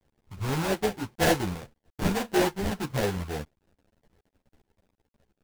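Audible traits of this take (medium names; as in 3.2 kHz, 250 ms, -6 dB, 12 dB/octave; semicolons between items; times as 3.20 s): a quantiser's noise floor 10-bit, dither none; phasing stages 2, 1.8 Hz, lowest notch 540–3300 Hz; aliases and images of a low sample rate 1.2 kHz, jitter 20%; a shimmering, thickened sound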